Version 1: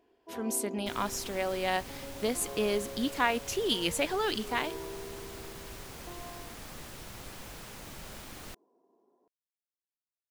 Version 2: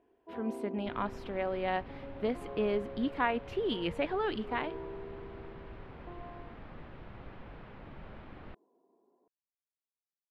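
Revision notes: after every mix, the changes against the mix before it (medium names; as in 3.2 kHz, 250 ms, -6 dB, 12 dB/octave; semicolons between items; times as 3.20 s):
second sound: add distance through air 190 m; master: add distance through air 470 m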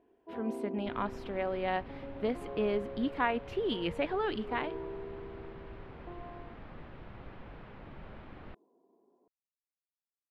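first sound: add tilt EQ -1.5 dB/octave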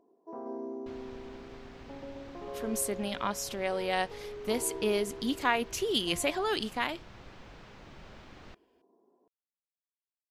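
speech: entry +2.25 s; second sound -3.5 dB; master: remove distance through air 470 m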